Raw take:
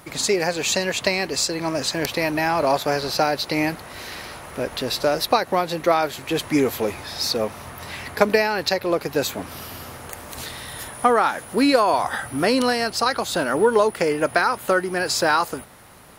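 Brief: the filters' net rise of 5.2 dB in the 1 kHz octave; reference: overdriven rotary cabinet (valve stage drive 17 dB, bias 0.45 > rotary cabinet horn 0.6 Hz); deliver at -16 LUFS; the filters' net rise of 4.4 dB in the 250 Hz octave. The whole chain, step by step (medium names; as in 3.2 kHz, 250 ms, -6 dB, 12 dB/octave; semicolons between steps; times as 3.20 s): peaking EQ 250 Hz +5 dB; peaking EQ 1 kHz +6.5 dB; valve stage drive 17 dB, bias 0.45; rotary cabinet horn 0.6 Hz; trim +10.5 dB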